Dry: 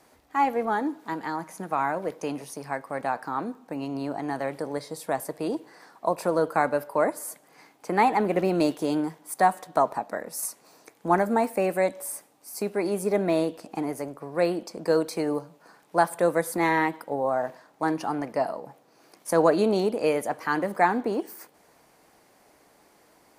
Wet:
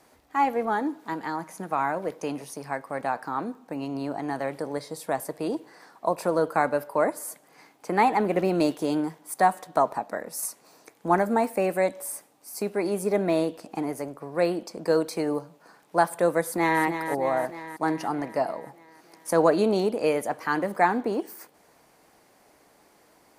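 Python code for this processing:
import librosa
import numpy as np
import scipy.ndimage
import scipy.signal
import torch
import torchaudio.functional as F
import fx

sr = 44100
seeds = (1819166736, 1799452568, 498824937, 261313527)

y = fx.echo_throw(x, sr, start_s=16.43, length_s=0.4, ms=310, feedback_pct=65, wet_db=-8.5)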